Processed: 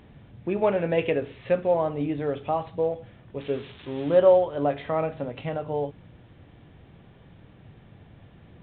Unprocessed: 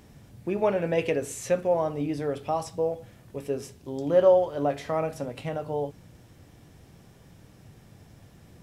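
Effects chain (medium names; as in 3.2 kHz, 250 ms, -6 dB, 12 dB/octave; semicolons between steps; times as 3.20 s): 3.40–4.19 s: zero-crossing glitches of -24.5 dBFS; trim +1.5 dB; µ-law 64 kbps 8 kHz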